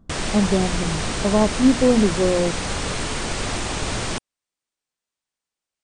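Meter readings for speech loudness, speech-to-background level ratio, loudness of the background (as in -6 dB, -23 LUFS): -20.5 LUFS, 5.0 dB, -25.5 LUFS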